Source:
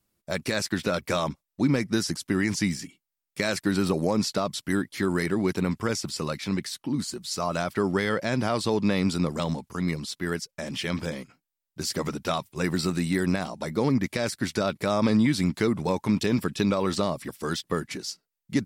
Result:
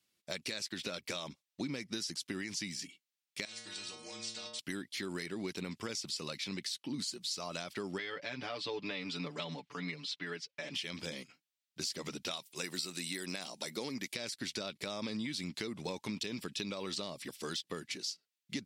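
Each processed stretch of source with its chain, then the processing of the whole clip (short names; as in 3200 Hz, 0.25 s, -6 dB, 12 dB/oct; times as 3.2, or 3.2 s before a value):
3.45–4.59 elliptic low-pass 8800 Hz + metallic resonator 110 Hz, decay 0.77 s, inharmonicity 0.008 + spectral compressor 2:1
7.98–10.75 LPF 2600 Hz + tilt +2 dB/oct + comb 6.9 ms, depth 87%
12.31–14.14 HPF 260 Hz 6 dB/oct + high shelf 7000 Hz +11 dB
whole clip: weighting filter D; compressor, threshold -27 dBFS; dynamic EQ 1600 Hz, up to -5 dB, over -46 dBFS, Q 0.96; gain -7.5 dB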